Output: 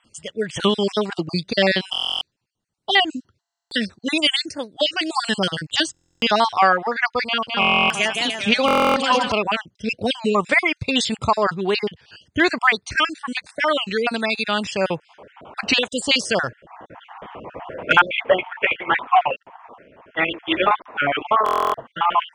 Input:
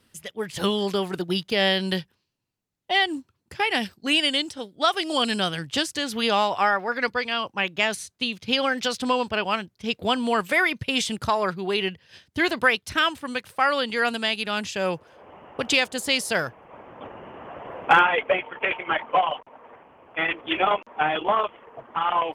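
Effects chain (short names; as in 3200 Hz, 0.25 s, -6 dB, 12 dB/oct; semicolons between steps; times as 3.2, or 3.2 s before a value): random spectral dropouts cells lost 40%; steep low-pass 9200 Hz 72 dB/oct; 7.27–9.32 bouncing-ball echo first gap 0.21 s, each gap 0.8×, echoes 5; stuck buffer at 1.91/3.41/5.92/7.6/8.66/21.44, samples 1024, times 12; record warp 33 1/3 rpm, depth 160 cents; gain +6 dB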